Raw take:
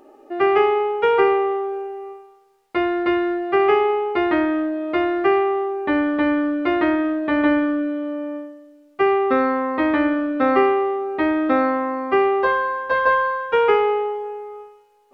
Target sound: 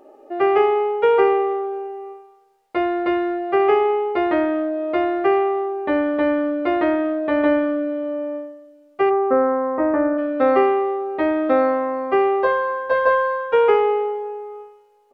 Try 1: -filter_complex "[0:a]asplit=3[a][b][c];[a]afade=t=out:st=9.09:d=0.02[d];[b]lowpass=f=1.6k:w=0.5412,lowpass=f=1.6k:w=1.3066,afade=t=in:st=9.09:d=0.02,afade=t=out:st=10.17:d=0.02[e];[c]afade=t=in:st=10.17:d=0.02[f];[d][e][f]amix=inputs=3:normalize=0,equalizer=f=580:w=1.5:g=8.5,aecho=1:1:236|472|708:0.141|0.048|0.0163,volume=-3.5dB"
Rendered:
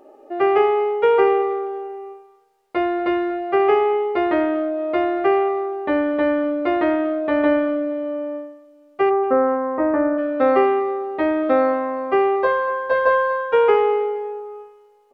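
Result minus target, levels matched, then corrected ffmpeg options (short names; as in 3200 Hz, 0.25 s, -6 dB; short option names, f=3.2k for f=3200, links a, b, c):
echo-to-direct +10 dB
-filter_complex "[0:a]asplit=3[a][b][c];[a]afade=t=out:st=9.09:d=0.02[d];[b]lowpass=f=1.6k:w=0.5412,lowpass=f=1.6k:w=1.3066,afade=t=in:st=9.09:d=0.02,afade=t=out:st=10.17:d=0.02[e];[c]afade=t=in:st=10.17:d=0.02[f];[d][e][f]amix=inputs=3:normalize=0,equalizer=f=580:w=1.5:g=8.5,aecho=1:1:236|472:0.0447|0.0152,volume=-3.5dB"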